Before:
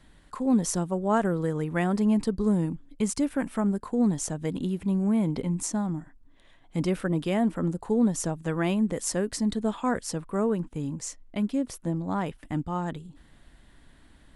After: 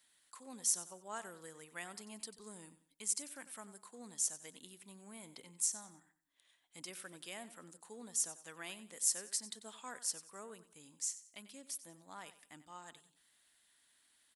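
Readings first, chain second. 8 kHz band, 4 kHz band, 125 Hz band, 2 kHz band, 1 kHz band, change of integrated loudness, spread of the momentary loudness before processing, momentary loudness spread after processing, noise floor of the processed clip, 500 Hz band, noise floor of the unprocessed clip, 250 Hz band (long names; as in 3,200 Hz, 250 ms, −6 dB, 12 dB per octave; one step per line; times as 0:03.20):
−1.0 dB, −5.5 dB, −33.5 dB, −13.0 dB, −19.0 dB, −12.0 dB, 8 LU, 20 LU, −74 dBFS, −24.5 dB, −56 dBFS, −31.0 dB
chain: first difference
on a send: repeating echo 93 ms, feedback 32%, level −15 dB
on the sum: level −1.5 dB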